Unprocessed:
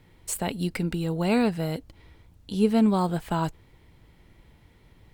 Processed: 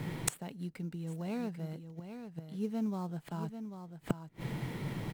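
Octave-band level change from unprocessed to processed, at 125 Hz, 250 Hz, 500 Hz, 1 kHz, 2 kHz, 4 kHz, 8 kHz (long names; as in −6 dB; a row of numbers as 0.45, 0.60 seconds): −7.5 dB, −11.5 dB, −14.5 dB, −14.5 dB, −10.5 dB, −11.5 dB, can't be measured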